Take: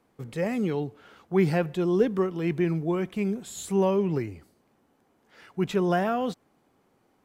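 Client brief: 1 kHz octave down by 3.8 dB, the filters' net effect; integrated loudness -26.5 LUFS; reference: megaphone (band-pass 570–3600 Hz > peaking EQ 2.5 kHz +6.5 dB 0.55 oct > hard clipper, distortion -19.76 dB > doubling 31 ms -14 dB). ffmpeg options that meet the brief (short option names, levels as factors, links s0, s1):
-filter_complex "[0:a]highpass=570,lowpass=3600,equalizer=f=1000:t=o:g=-4.5,equalizer=f=2500:t=o:w=0.55:g=6.5,asoftclip=type=hard:threshold=0.0668,asplit=2[s0][s1];[s1]adelay=31,volume=0.2[s2];[s0][s2]amix=inputs=2:normalize=0,volume=2.51"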